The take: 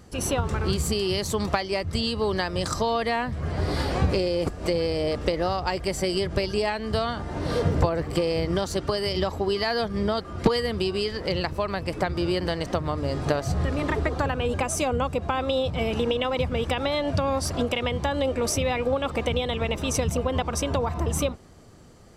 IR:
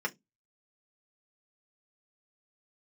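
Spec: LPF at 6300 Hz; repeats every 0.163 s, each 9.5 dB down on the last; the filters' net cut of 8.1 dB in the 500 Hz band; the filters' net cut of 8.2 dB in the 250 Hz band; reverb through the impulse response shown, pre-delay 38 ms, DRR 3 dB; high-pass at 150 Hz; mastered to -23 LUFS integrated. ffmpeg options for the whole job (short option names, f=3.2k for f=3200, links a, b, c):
-filter_complex "[0:a]highpass=150,lowpass=6.3k,equalizer=f=250:t=o:g=-8,equalizer=f=500:t=o:g=-7.5,aecho=1:1:163|326|489|652:0.335|0.111|0.0365|0.012,asplit=2[a][b];[1:a]atrim=start_sample=2205,adelay=38[c];[b][c]afir=irnorm=-1:irlink=0,volume=-9dB[d];[a][d]amix=inputs=2:normalize=0,volume=6.5dB"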